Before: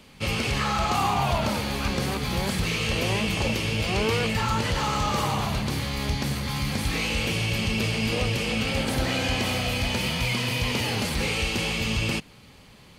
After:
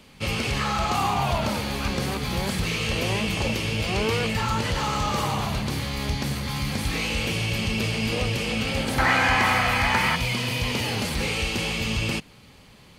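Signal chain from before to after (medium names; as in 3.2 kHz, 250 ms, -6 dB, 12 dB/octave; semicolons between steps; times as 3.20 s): 8.98–10.16 s: high-order bell 1.3 kHz +13.5 dB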